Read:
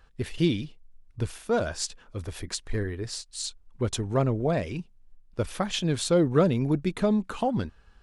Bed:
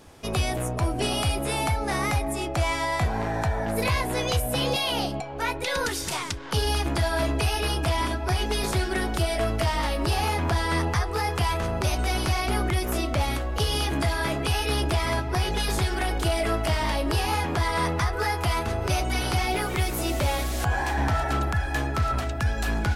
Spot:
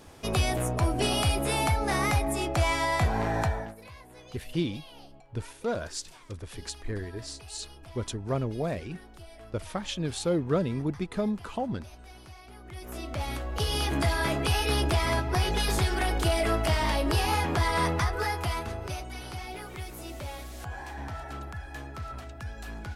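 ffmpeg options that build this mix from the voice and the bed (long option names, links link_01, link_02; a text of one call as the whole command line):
ffmpeg -i stem1.wav -i stem2.wav -filter_complex "[0:a]adelay=4150,volume=-5dB[link_01];[1:a]volume=22dB,afade=type=out:start_time=3.42:duration=0.33:silence=0.0707946,afade=type=in:start_time=12.63:duration=1.44:silence=0.0749894,afade=type=out:start_time=17.85:duration=1.23:silence=0.237137[link_02];[link_01][link_02]amix=inputs=2:normalize=0" out.wav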